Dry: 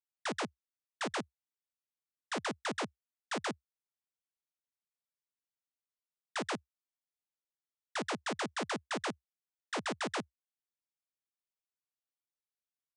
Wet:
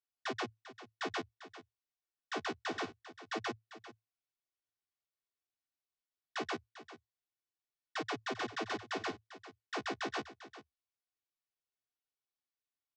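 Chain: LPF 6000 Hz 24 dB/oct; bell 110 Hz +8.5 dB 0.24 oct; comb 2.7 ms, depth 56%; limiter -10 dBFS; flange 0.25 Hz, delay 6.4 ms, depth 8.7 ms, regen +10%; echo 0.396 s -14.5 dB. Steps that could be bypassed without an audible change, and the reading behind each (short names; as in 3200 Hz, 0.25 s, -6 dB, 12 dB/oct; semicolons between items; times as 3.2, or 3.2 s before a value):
limiter -10 dBFS: input peak -20.5 dBFS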